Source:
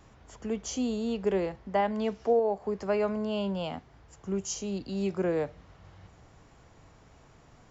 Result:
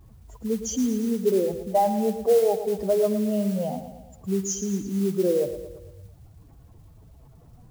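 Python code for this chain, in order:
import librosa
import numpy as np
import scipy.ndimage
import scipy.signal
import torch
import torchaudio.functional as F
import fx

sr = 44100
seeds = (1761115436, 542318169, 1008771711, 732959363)

y = fx.spec_expand(x, sr, power=2.3)
y = fx.mod_noise(y, sr, seeds[0], snr_db=21)
y = fx.echo_feedback(y, sr, ms=113, feedback_pct=53, wet_db=-10.5)
y = F.gain(torch.from_numpy(y), 6.0).numpy()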